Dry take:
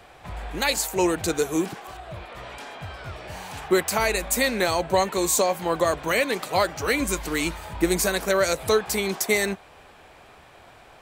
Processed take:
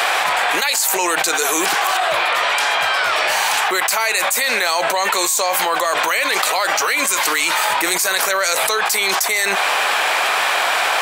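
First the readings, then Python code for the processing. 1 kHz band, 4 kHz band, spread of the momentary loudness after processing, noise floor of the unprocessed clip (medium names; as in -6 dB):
+11.5 dB, +12.5 dB, 1 LU, -50 dBFS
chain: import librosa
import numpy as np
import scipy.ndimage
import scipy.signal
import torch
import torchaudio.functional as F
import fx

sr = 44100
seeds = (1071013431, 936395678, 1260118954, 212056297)

y = scipy.signal.sosfilt(scipy.signal.butter(2, 930.0, 'highpass', fs=sr, output='sos'), x)
y = fx.env_flatten(y, sr, amount_pct=100)
y = F.gain(torch.from_numpy(y), 3.0).numpy()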